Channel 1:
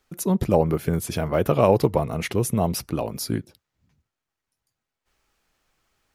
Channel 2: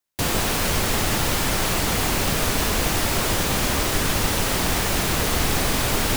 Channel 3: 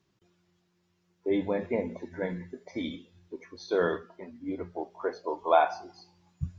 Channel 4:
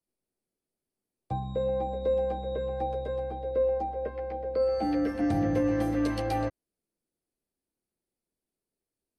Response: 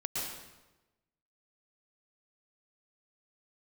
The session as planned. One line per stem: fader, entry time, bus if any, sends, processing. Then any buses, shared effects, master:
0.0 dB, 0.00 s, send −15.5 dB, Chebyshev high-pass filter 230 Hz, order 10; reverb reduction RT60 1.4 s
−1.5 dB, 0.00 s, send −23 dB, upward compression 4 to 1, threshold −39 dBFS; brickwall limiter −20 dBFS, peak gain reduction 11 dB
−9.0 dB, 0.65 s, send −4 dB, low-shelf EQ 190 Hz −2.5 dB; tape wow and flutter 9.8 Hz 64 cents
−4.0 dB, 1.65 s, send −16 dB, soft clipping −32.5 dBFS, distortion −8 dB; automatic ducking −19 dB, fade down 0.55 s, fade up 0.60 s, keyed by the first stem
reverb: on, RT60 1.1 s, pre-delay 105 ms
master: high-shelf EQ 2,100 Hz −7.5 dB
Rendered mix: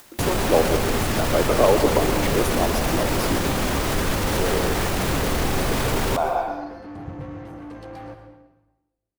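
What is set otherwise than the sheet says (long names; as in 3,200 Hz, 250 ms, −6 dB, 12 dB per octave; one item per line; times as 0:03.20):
stem 2 −1.5 dB → +7.0 dB
reverb return +8.5 dB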